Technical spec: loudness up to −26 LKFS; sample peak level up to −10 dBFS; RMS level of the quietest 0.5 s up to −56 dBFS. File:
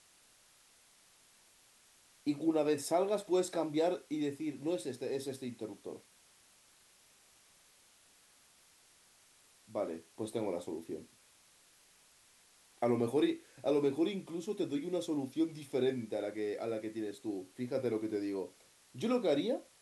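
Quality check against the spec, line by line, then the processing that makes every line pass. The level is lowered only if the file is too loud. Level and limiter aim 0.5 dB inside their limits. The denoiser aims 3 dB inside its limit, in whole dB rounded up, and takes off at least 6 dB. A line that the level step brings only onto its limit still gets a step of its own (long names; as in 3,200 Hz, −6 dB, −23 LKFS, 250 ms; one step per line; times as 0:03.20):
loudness −36.0 LKFS: in spec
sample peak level −20.0 dBFS: in spec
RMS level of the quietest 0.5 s −65 dBFS: in spec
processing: no processing needed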